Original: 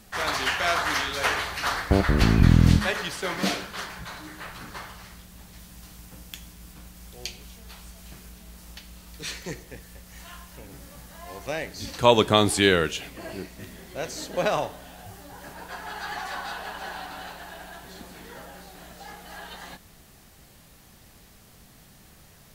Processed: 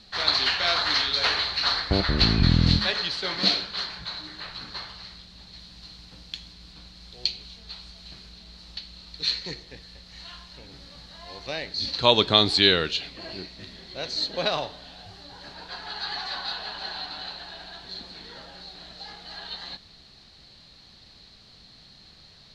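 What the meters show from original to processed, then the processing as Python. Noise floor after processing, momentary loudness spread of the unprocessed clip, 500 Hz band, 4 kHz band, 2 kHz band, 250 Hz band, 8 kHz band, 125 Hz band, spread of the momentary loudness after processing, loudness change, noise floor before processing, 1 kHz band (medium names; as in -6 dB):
-52 dBFS, 25 LU, -3.5 dB, +8.0 dB, -1.5 dB, -3.5 dB, -8.5 dB, -3.5 dB, 22 LU, +1.0 dB, -53 dBFS, -3.0 dB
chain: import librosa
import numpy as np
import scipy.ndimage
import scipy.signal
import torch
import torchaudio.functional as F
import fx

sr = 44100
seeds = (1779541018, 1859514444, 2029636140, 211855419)

y = fx.lowpass_res(x, sr, hz=4200.0, q=10.0)
y = y * 10.0 ** (-3.5 / 20.0)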